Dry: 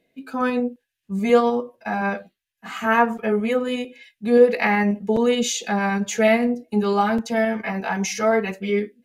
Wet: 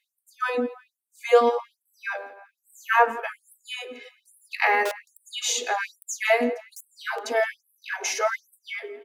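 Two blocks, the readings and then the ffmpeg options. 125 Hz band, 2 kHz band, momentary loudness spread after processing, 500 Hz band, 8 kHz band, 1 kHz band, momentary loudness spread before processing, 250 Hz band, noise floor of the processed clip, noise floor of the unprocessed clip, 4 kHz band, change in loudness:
under -30 dB, -1.0 dB, 18 LU, -6.0 dB, 0.0 dB, -2.5 dB, 10 LU, -16.0 dB, -83 dBFS, -81 dBFS, -1.0 dB, -4.0 dB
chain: -filter_complex "[0:a]acrossover=split=190[s0][s1];[s0]aeval=exprs='(mod(16.8*val(0)+1,2)-1)/16.8':c=same[s2];[s1]asplit=2[s3][s4];[s4]adelay=168,lowpass=f=3400:p=1,volume=0.141,asplit=2[s5][s6];[s6]adelay=168,lowpass=f=3400:p=1,volume=0.48,asplit=2[s7][s8];[s8]adelay=168,lowpass=f=3400:p=1,volume=0.48,asplit=2[s9][s10];[s10]adelay=168,lowpass=f=3400:p=1,volume=0.48[s11];[s3][s5][s7][s9][s11]amix=inputs=5:normalize=0[s12];[s2][s12]amix=inputs=2:normalize=0,afftfilt=real='re*gte(b*sr/1024,240*pow(8000/240,0.5+0.5*sin(2*PI*1.2*pts/sr)))':imag='im*gte(b*sr/1024,240*pow(8000/240,0.5+0.5*sin(2*PI*1.2*pts/sr)))':win_size=1024:overlap=0.75"

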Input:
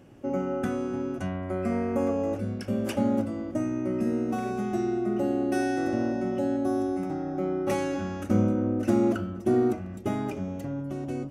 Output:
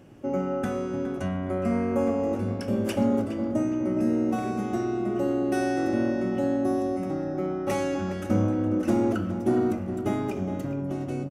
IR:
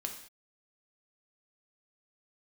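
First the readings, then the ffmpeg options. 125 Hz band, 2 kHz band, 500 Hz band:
+1.5 dB, +1.0 dB, +1.0 dB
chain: -filter_complex "[0:a]asoftclip=type=tanh:threshold=0.2,asplit=2[s0][s1];[s1]adelay=414,lowpass=f=3200:p=1,volume=0.316,asplit=2[s2][s3];[s3]adelay=414,lowpass=f=3200:p=1,volume=0.48,asplit=2[s4][s5];[s5]adelay=414,lowpass=f=3200:p=1,volume=0.48,asplit=2[s6][s7];[s7]adelay=414,lowpass=f=3200:p=1,volume=0.48,asplit=2[s8][s9];[s9]adelay=414,lowpass=f=3200:p=1,volume=0.48[s10];[s0][s2][s4][s6][s8][s10]amix=inputs=6:normalize=0,asplit=2[s11][s12];[1:a]atrim=start_sample=2205,afade=t=out:st=0.2:d=0.01,atrim=end_sample=9261[s13];[s12][s13]afir=irnorm=-1:irlink=0,volume=0.596[s14];[s11][s14]amix=inputs=2:normalize=0,volume=0.794"

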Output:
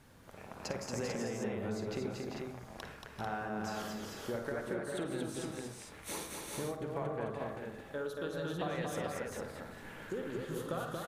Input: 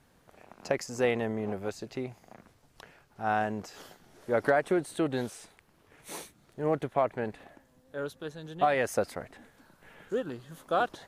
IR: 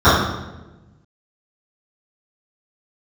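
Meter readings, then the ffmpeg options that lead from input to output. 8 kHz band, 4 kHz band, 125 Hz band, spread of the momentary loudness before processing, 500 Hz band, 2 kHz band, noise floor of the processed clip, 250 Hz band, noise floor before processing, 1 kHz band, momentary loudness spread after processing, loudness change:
0.0 dB, -1.5 dB, -2.0 dB, 17 LU, -7.5 dB, -7.5 dB, -52 dBFS, -4.5 dB, -65 dBFS, -10.0 dB, 9 LU, -8.5 dB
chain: -filter_complex "[0:a]bandreject=f=710:w=12,acompressor=threshold=0.01:ratio=16,aecho=1:1:52|230|388|402|443:0.299|0.668|0.355|0.398|0.596,asplit=2[s0][s1];[1:a]atrim=start_sample=2205,afade=t=out:st=0.16:d=0.01,atrim=end_sample=7497,adelay=39[s2];[s1][s2]afir=irnorm=-1:irlink=0,volume=0.0141[s3];[s0][s3]amix=inputs=2:normalize=0,volume=1.41"

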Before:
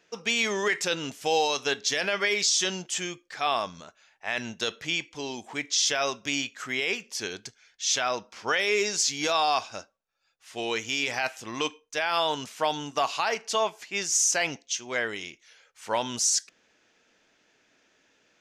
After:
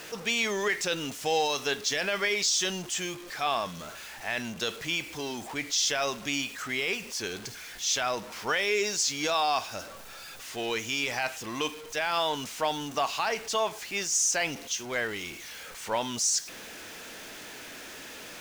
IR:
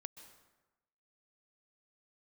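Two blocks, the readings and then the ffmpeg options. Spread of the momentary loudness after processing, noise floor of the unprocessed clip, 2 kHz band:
16 LU, -69 dBFS, -1.5 dB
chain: -af "aeval=exprs='val(0)+0.5*0.0178*sgn(val(0))':c=same,volume=0.708"

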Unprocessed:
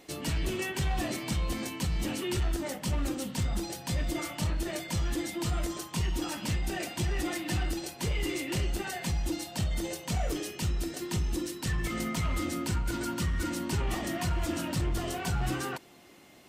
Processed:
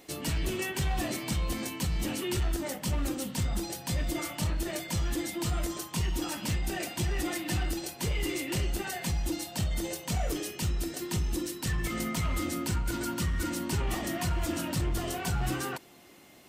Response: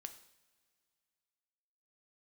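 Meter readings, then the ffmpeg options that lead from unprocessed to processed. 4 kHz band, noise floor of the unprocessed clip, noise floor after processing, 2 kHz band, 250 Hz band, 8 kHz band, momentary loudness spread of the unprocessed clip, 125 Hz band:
+0.5 dB, -49 dBFS, -48 dBFS, 0.0 dB, 0.0 dB, +2.0 dB, 3 LU, 0.0 dB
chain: -af "highshelf=f=11000:g=7"

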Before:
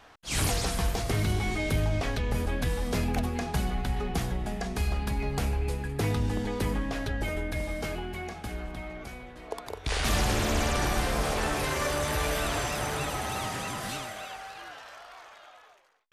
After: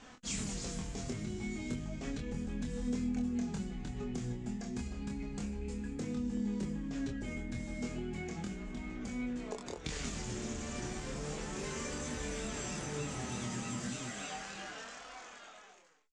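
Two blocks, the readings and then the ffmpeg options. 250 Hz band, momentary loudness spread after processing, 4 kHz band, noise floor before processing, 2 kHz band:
-2.5 dB, 6 LU, -11.5 dB, -53 dBFS, -12.0 dB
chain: -filter_complex "[0:a]firequalizer=gain_entry='entry(100,0);entry(210,12);entry(300,5);entry(680,-5);entry(1100,-4);entry(2200,-1);entry(4100,-2);entry(7300,9);entry(12000,-26)':delay=0.05:min_phase=1,acompressor=threshold=0.0126:ratio=6,flanger=delay=3.9:depth=4.7:regen=48:speed=0.33:shape=sinusoidal,asplit=2[s0][s1];[s1]aecho=0:1:25|41:0.631|0.133[s2];[s0][s2]amix=inputs=2:normalize=0,volume=1.5"

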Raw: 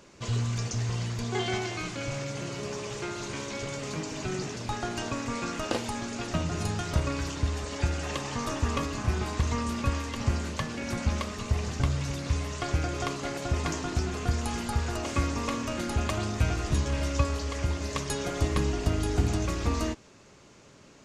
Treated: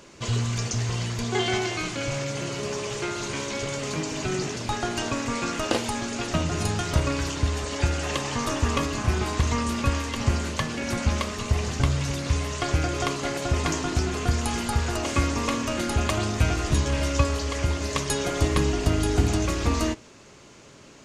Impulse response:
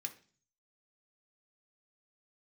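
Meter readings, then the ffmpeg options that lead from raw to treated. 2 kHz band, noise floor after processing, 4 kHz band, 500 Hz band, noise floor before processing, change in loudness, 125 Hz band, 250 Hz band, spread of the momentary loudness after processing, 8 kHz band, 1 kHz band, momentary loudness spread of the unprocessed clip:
+5.5 dB, -49 dBFS, +6.0 dB, +5.0 dB, -54 dBFS, +4.5 dB, +3.5 dB, +4.5 dB, 5 LU, +6.5 dB, +5.0 dB, 6 LU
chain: -filter_complex "[0:a]asplit=2[s0][s1];[1:a]atrim=start_sample=2205,asetrate=52920,aresample=44100[s2];[s1][s2]afir=irnorm=-1:irlink=0,volume=0.422[s3];[s0][s3]amix=inputs=2:normalize=0,volume=1.68"

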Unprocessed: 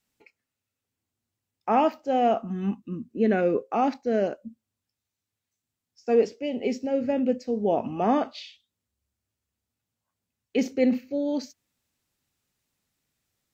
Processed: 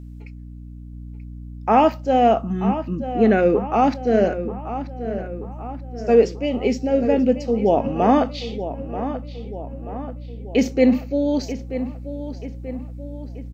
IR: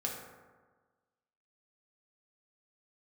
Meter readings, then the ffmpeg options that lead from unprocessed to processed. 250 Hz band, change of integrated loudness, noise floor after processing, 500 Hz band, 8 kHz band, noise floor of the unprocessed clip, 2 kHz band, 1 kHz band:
+7.0 dB, +5.5 dB, -36 dBFS, +7.0 dB, no reading, under -85 dBFS, +7.0 dB, +7.0 dB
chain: -filter_complex "[0:a]aeval=exprs='val(0)+0.00794*(sin(2*PI*60*n/s)+sin(2*PI*2*60*n/s)/2+sin(2*PI*3*60*n/s)/3+sin(2*PI*4*60*n/s)/4+sin(2*PI*5*60*n/s)/5)':c=same,asplit=2[s0][s1];[s1]adelay=934,lowpass=f=3000:p=1,volume=0.282,asplit=2[s2][s3];[s3]adelay=934,lowpass=f=3000:p=1,volume=0.54,asplit=2[s4][s5];[s5]adelay=934,lowpass=f=3000:p=1,volume=0.54,asplit=2[s6][s7];[s7]adelay=934,lowpass=f=3000:p=1,volume=0.54,asplit=2[s8][s9];[s9]adelay=934,lowpass=f=3000:p=1,volume=0.54,asplit=2[s10][s11];[s11]adelay=934,lowpass=f=3000:p=1,volume=0.54[s12];[s2][s4][s6][s8][s10][s12]amix=inputs=6:normalize=0[s13];[s0][s13]amix=inputs=2:normalize=0,volume=2.11"

